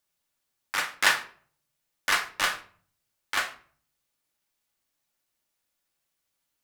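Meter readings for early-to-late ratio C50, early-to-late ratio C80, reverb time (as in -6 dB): 13.0 dB, 17.5 dB, 0.50 s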